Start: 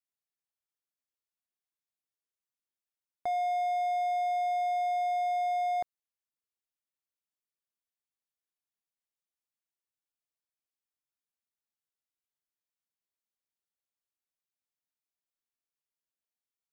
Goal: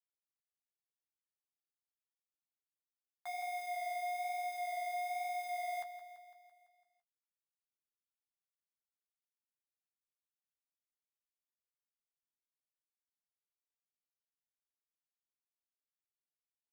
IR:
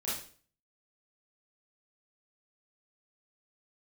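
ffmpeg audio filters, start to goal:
-af "highpass=f=1000:w=0.5412,highpass=f=1000:w=1.3066,highshelf=f=5900:g=-3,alimiter=level_in=5.96:limit=0.0631:level=0:latency=1,volume=0.168,acrusher=bits=8:mix=0:aa=0.000001,flanger=delay=4.8:depth=9.2:regen=-33:speed=1.1:shape=sinusoidal,aecho=1:1:168|336|504|672|840|1008|1176:0.251|0.148|0.0874|0.0516|0.0304|0.018|0.0106,volume=2"

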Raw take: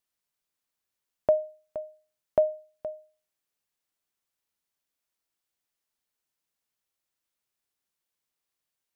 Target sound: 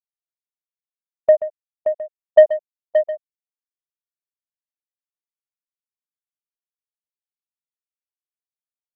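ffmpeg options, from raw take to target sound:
-af "afftfilt=real='re*gte(hypot(re,im),0.562)':imag='im*gte(hypot(re,im),0.562)':win_size=1024:overlap=0.75,dynaudnorm=f=300:g=11:m=3.16,agate=range=0.2:threshold=0.0158:ratio=16:detection=peak,acontrast=63,aecho=1:1:131|575|712:0.2|0.398|0.126,volume=1.12"

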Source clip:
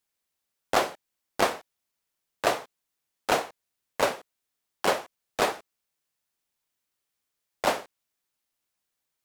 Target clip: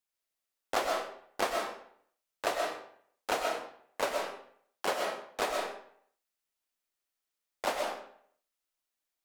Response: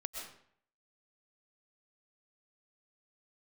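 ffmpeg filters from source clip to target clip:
-filter_complex "[0:a]equalizer=f=120:t=o:w=1.4:g=-9.5[s0];[1:a]atrim=start_sample=2205[s1];[s0][s1]afir=irnorm=-1:irlink=0,volume=0.631"

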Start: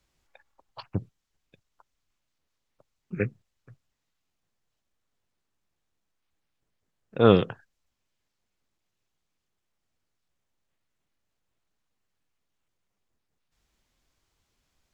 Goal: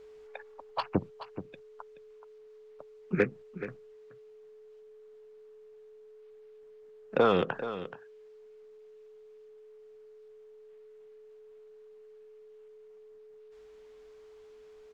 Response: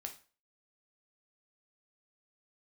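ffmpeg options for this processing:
-filter_complex "[0:a]equalizer=f=110:t=o:w=0.39:g=-13,acrossover=split=150|670|2200[s0][s1][s2][s3];[s1]alimiter=limit=0.126:level=0:latency=1[s4];[s0][s4][s2][s3]amix=inputs=4:normalize=0,acompressor=threshold=0.0355:ratio=8,asplit=2[s5][s6];[s6]highpass=f=720:p=1,volume=3.98,asoftclip=type=tanh:threshold=0.0944[s7];[s5][s7]amix=inputs=2:normalize=0,lowpass=f=1200:p=1,volume=0.501,aeval=exprs='val(0)+0.00126*sin(2*PI*430*n/s)':c=same,aecho=1:1:427:0.237,volume=2.82"

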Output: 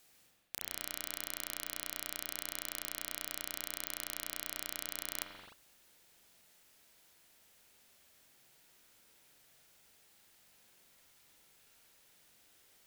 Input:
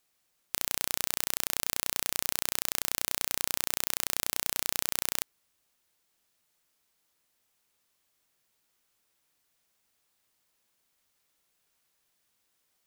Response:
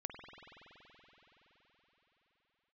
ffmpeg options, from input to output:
-filter_complex "[0:a]equalizer=f=1100:t=o:w=0.34:g=-5,areverse,acompressor=threshold=0.00794:ratio=10,areverse[s0];[1:a]atrim=start_sample=2205,afade=t=out:st=0.39:d=0.01,atrim=end_sample=17640,asetrate=48510,aresample=44100[s1];[s0][s1]afir=irnorm=-1:irlink=0,volume=5.31"

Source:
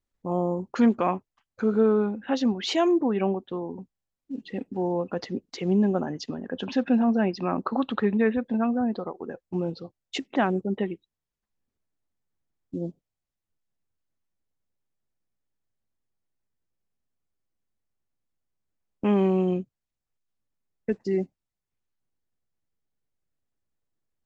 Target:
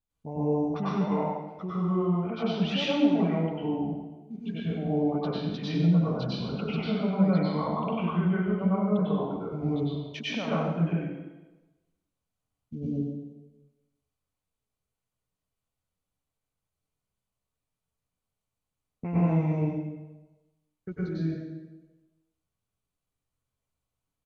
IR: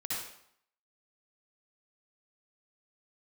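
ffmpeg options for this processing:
-filter_complex "[0:a]alimiter=limit=0.1:level=0:latency=1:release=362,equalizer=f=125:t=o:w=0.33:g=4,equalizer=f=400:t=o:w=0.33:g=-6,equalizer=f=2000:t=o:w=0.33:g=-7,equalizer=f=6300:t=o:w=0.33:g=-7,asetrate=37084,aresample=44100,atempo=1.18921[s0];[1:a]atrim=start_sample=2205,asetrate=26019,aresample=44100[s1];[s0][s1]afir=irnorm=-1:irlink=0,volume=0.708"

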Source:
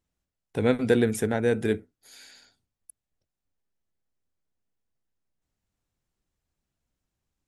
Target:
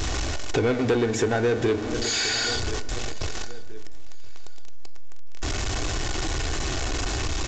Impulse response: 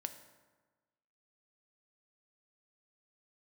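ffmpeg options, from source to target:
-filter_complex "[0:a]aeval=exprs='val(0)+0.5*0.0237*sgn(val(0))':c=same,aecho=1:1:2.7:0.41,aecho=1:1:1027|2054:0.0668|0.0207,asplit=2[s0][s1];[1:a]atrim=start_sample=2205[s2];[s1][s2]afir=irnorm=-1:irlink=0,volume=2.37[s3];[s0][s3]amix=inputs=2:normalize=0,aresample=16000,aresample=44100,asoftclip=type=tanh:threshold=0.422,acompressor=threshold=0.0562:ratio=4,equalizer=f=190:w=2.5:g=-8,acontrast=32,volume=0.891"

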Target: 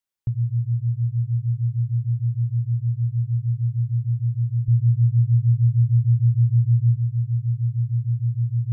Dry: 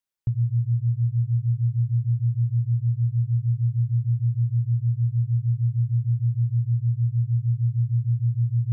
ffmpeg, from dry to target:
-filter_complex "[0:a]asettb=1/sr,asplit=3[s0][s1][s2];[s0]atrim=end=4.684[s3];[s1]atrim=start=4.68:end=6.97,asetpts=PTS-STARTPTS,afade=t=in:d=0.004:c=qsin,afade=t=out:st=2.286:d=0.004:c=qsin,lowshelf=f=130:g=9.5[s4];[s2]atrim=start=6.966[s5];[s3][s4]acrossfade=d=0.004:c1=hsin:c2=qsin[s6];[s6][s5]acrossfade=d=0.004:c1=qsin:c2=hsin"

